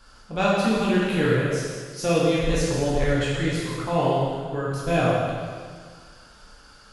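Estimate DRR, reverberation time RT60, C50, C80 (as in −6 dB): −7.5 dB, 1.8 s, −2.0 dB, 0.0 dB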